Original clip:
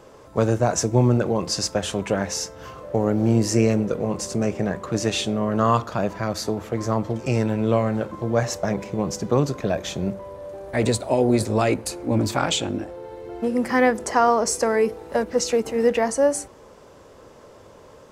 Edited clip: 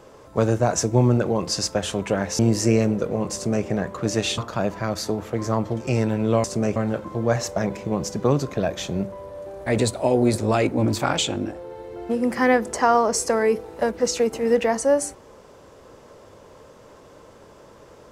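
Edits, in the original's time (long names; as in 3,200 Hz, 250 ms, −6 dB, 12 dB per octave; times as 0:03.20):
0:02.39–0:03.28: remove
0:04.23–0:04.55: duplicate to 0:07.83
0:05.27–0:05.77: remove
0:11.79–0:12.05: remove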